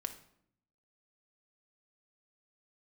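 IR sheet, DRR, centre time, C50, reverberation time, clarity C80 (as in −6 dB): 6.0 dB, 8 ms, 11.0 dB, 0.70 s, 15.0 dB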